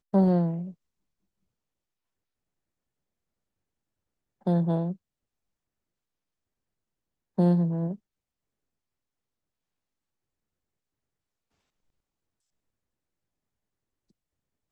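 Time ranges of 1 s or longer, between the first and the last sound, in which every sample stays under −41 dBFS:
0:00.71–0:04.46
0:04.93–0:07.38

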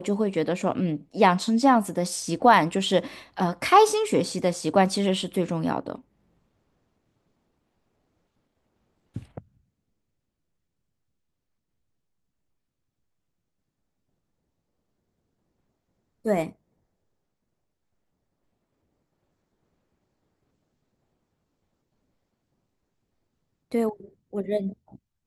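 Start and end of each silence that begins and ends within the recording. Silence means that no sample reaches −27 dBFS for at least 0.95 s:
0:05.95–0:09.16
0:09.38–0:16.26
0:16.47–0:23.74

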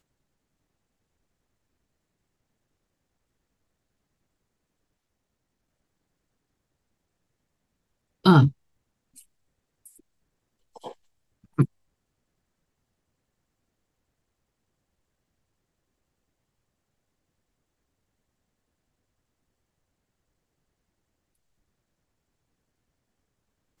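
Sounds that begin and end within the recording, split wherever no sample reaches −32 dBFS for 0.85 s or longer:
0:08.25–0:08.49
0:10.77–0:11.65

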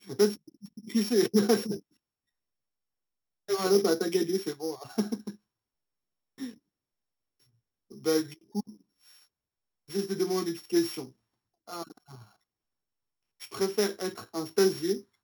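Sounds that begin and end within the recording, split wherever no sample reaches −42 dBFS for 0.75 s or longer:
0:03.49–0:05.31
0:06.40–0:06.54
0:07.92–0:08.70
0:09.89–0:12.22

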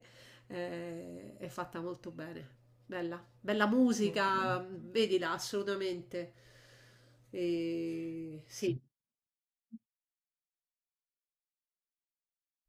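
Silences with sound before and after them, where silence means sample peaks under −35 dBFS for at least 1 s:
0:06.22–0:07.35

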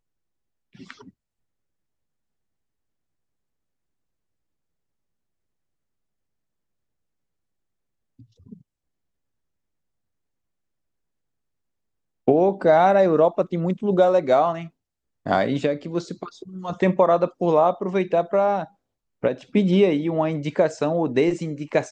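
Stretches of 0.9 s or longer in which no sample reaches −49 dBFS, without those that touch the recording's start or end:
0:01.10–0:08.19
0:08.61–0:12.27

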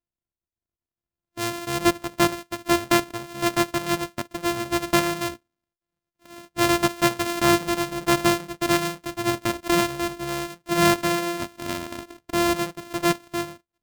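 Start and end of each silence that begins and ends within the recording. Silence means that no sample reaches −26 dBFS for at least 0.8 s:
0:05.30–0:06.58

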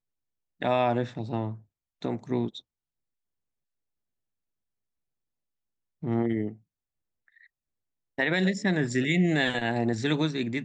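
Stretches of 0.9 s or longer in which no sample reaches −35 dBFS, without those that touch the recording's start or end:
0:02.59–0:06.03
0:06.52–0:08.19

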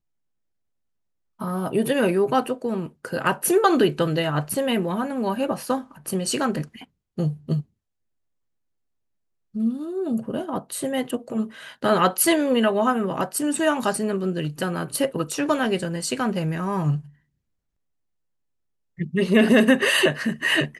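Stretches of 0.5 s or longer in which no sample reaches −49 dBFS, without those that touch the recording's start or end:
0:07.63–0:09.54
0:17.13–0:18.98

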